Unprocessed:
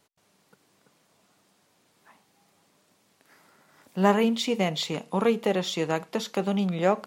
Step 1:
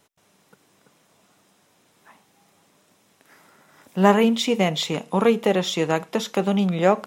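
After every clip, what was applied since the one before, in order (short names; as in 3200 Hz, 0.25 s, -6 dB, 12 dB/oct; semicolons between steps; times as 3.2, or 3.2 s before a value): notch 4500 Hz, Q 9.5; gain +5 dB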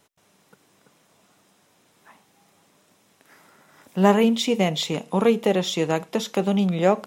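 dynamic EQ 1400 Hz, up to -4 dB, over -37 dBFS, Q 0.95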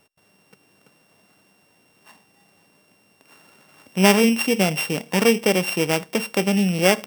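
sample sorter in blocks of 16 samples; gain +1.5 dB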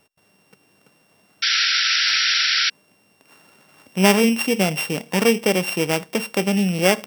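painted sound noise, 1.42–2.7, 1300–5800 Hz -19 dBFS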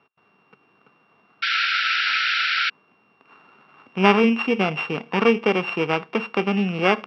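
speaker cabinet 160–3300 Hz, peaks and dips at 180 Hz -5 dB, 300 Hz -5 dB, 580 Hz -9 dB, 1200 Hz +7 dB, 1900 Hz -6 dB, 3300 Hz -5 dB; gain +2.5 dB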